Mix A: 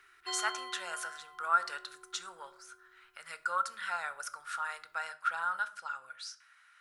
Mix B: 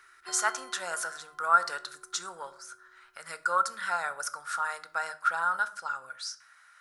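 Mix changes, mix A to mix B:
speech +10.5 dB
master: add drawn EQ curve 360 Hz 0 dB, 1,700 Hz −6 dB, 2,800 Hz −12 dB, 5,200 Hz −3 dB

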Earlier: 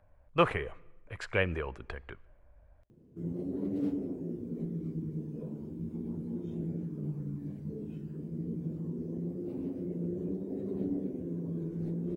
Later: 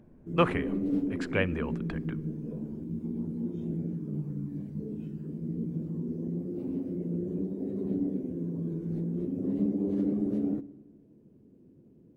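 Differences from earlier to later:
background: entry −2.90 s
master: add parametric band 230 Hz +5 dB 0.96 octaves

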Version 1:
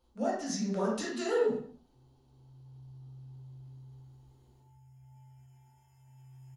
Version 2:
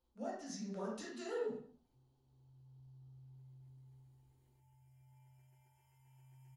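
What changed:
speech −11.5 dB
background: send off

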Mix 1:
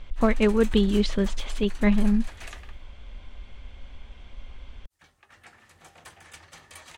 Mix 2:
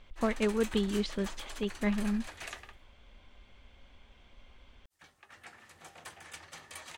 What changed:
speech −7.5 dB
master: add low-shelf EQ 94 Hz −10 dB

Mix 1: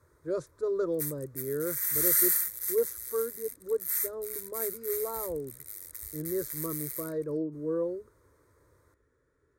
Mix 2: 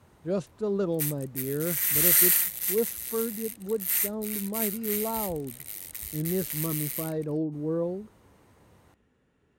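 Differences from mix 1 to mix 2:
background +3.5 dB
master: remove phaser with its sweep stopped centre 770 Hz, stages 6

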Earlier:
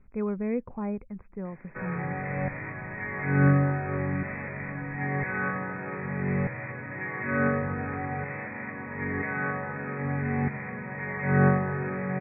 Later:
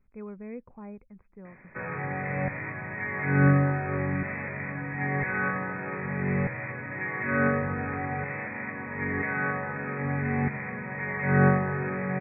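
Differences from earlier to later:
speech −11.0 dB
master: remove high-frequency loss of the air 250 metres

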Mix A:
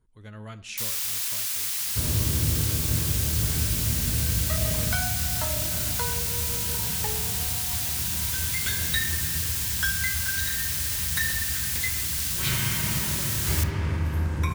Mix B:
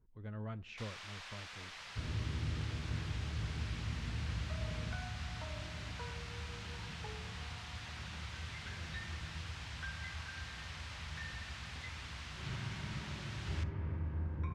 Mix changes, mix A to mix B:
speech: send −10.5 dB
second sound −12.0 dB
master: add head-to-tape spacing loss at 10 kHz 40 dB

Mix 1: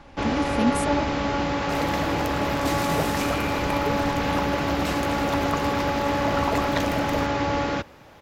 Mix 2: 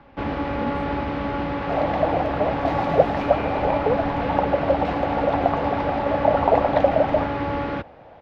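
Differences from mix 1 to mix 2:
speech −9.5 dB
second sound: add flat-topped bell 640 Hz +15 dB 1.1 octaves
master: add high-frequency loss of the air 330 metres

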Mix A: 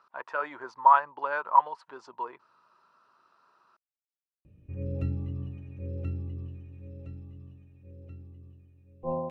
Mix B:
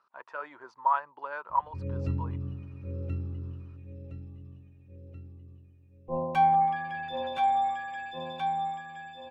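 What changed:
speech −7.0 dB
background: entry −2.95 s

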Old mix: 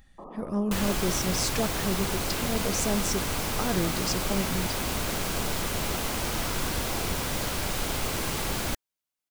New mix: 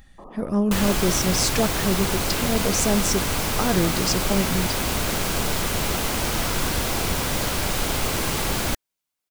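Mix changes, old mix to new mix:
speech +6.5 dB
second sound +5.5 dB

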